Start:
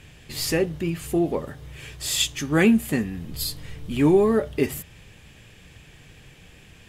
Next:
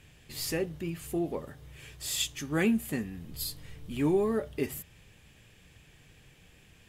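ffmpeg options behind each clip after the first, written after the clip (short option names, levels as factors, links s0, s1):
-af "highshelf=f=11000:g=6.5,volume=0.355"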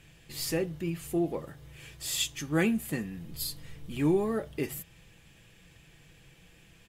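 -af "aecho=1:1:6:0.38"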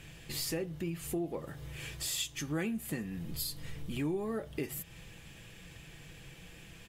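-af "acompressor=threshold=0.00794:ratio=3,volume=1.88"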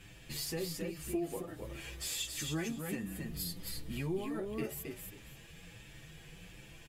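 -filter_complex "[0:a]asplit=2[s0][s1];[s1]aecho=0:1:269|538|807:0.631|0.114|0.0204[s2];[s0][s2]amix=inputs=2:normalize=0,asplit=2[s3][s4];[s4]adelay=7.9,afreqshift=1.4[s5];[s3][s5]amix=inputs=2:normalize=1"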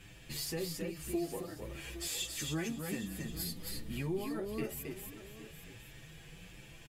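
-af "aecho=1:1:813:0.188"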